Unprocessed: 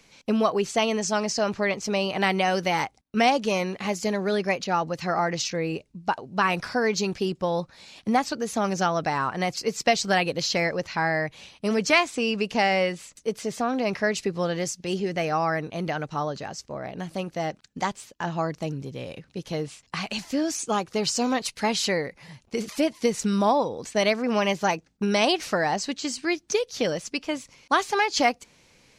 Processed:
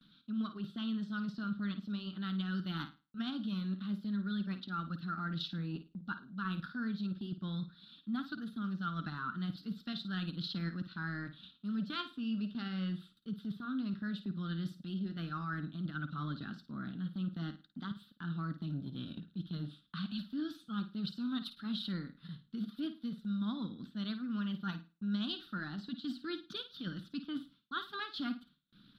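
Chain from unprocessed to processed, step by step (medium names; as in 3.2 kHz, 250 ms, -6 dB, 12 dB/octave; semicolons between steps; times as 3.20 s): FFT filter 110 Hz 0 dB, 200 Hz +14 dB, 290 Hz +7 dB, 500 Hz -19 dB, 870 Hz -16 dB, 1.4 kHz +12 dB, 2.2 kHz -17 dB, 3.6 kHz +13 dB, 6.6 kHz -28 dB, 14 kHz +1 dB; transient shaper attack -4 dB, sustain -8 dB; reverse; compression 5:1, threshold -28 dBFS, peak gain reduction 17 dB; reverse; gate with hold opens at -49 dBFS; flange 0.38 Hz, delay 0.1 ms, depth 5.4 ms, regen -77%; on a send: flutter echo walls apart 9.2 m, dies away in 0.29 s; on the sum: trim -4 dB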